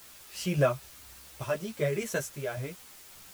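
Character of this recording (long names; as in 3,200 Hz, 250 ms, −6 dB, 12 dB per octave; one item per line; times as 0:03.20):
sample-and-hold tremolo, depth 90%
a quantiser's noise floor 10 bits, dither triangular
a shimmering, thickened sound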